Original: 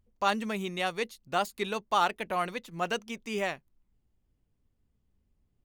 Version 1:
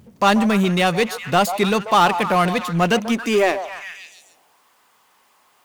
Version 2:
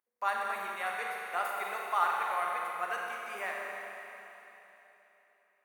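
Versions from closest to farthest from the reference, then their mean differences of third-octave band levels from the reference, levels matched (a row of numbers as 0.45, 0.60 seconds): 1, 2; 5.5, 11.0 decibels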